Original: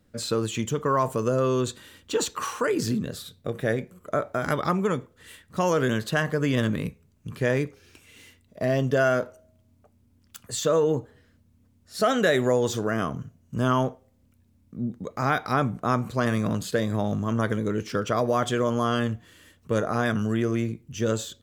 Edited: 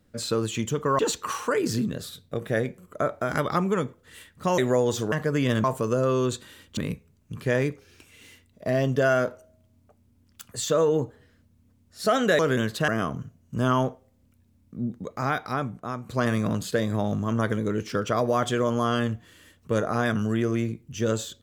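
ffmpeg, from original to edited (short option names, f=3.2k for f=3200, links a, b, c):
-filter_complex "[0:a]asplit=9[a][b][c][d][e][f][g][h][i];[a]atrim=end=0.992[j];[b]atrim=start=2.118:end=5.712[k];[c]atrim=start=12.338:end=12.882[l];[d]atrim=start=6.198:end=6.722[m];[e]atrim=start=0.988:end=2.122[n];[f]atrim=start=6.718:end=12.342[o];[g]atrim=start=5.708:end=6.202[p];[h]atrim=start=12.878:end=16.09,asetpts=PTS-STARTPTS,afade=t=out:st=2.062:d=1.15:silence=0.251189[q];[i]atrim=start=16.09,asetpts=PTS-STARTPTS,afade=t=in:d=0.004:c=hsin:silence=0.251189[r];[j][k]acrossfade=d=0.004:c1=hsin:c2=hsin[s];[s][l]acrossfade=d=0.004:c1=hsin:c2=hsin[t];[t][m]acrossfade=d=0.004:c1=hsin:c2=hsin[u];[u][n]acrossfade=d=0.004:c1=hsin:c2=hsin[v];[v][o]acrossfade=d=0.004:c1=hsin:c2=hsin[w];[w][p]acrossfade=d=0.004:c1=hsin:c2=hsin[x];[q][r]concat=n=2:v=0:a=1[y];[x][y]acrossfade=d=0.004:c1=hsin:c2=hsin"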